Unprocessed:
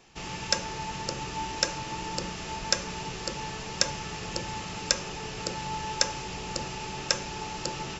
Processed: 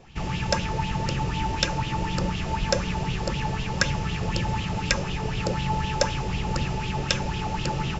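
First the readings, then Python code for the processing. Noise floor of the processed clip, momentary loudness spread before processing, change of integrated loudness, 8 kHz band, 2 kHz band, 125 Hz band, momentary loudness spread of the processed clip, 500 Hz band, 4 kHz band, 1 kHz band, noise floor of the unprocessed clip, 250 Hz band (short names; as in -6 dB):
-31 dBFS, 7 LU, +4.5 dB, n/a, +5.0 dB, +13.5 dB, 3 LU, +6.0 dB, +0.5 dB, +5.0 dB, -38 dBFS, +9.5 dB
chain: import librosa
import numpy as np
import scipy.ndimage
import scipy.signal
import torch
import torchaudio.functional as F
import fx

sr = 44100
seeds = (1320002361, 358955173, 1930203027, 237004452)

y = fx.bass_treble(x, sr, bass_db=15, treble_db=-4)
y = fx.bell_lfo(y, sr, hz=4.0, low_hz=520.0, high_hz=3400.0, db=12)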